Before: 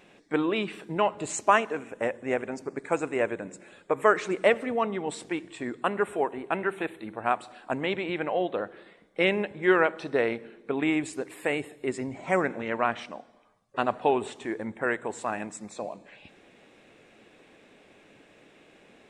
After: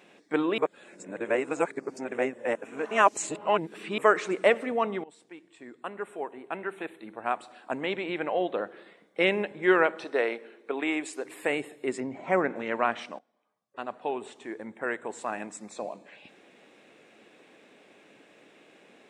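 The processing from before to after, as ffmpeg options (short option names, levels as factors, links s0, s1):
-filter_complex "[0:a]asettb=1/sr,asplit=3[s0][s1][s2];[s0]atrim=end=10.044[s3];[s1]atrim=start=10.04:end=11.25,asetpts=PTS-STARTPTS,afade=t=in:d=0.004:c=qsin,afade=t=out:st=1.206:d=0.004:c=qsin,highpass=350[s4];[s2]atrim=start=11.246[s5];[s3][s4]acrossfade=d=0.004:c1=hsin:c2=qsin[s6];[s6][s5]acrossfade=d=0.004:c1=qsin:c2=hsin,asettb=1/sr,asplit=3[s7][s8][s9];[s7]atrim=end=12.004[s10];[s8]atrim=start=12:end=12.56,asetpts=PTS-STARTPTS,afade=t=in:d=0.004:c=qsin,afade=t=out:st=0.556:d=0.004:c=qsin,aemphasis=mode=reproduction:type=75fm[s11];[s9]atrim=start=12.556[s12];[s10][s11]acrossfade=d=0.004:c1=hsin:c2=qsin[s13];[s13][s12]acrossfade=d=0.004:c1=qsin:c2=hsin,asplit=5[s14][s15][s16][s17][s18];[s14]atrim=end=0.582[s19];[s15]atrim=start=0.578:end=3.982,asetpts=PTS-STARTPTS,areverse[s20];[s16]atrim=start=3.978:end=5.04,asetpts=PTS-STARTPTS,afade=t=out:st=1.058:d=0.004:c=hsin:silence=0.0944061[s21];[s17]atrim=start=5.04:end=13.19,asetpts=PTS-STARTPTS,afade=t=in:d=3.45:silence=0.0944061,afade=t=out:st=8.146:d=0.004:c=hsin:silence=0.11885[s22];[s18]atrim=start=13.19,asetpts=PTS-STARTPTS,afade=t=in:d=2.74:silence=0.11885[s23];[s19][s20]acrossfade=d=0.004:c1=hsin:c2=hsin[s24];[s21][s22][s23]concat=n=3:v=0:a=1[s25];[s24][s25]acrossfade=d=0.004:c1=hsin:c2=hsin,highpass=190"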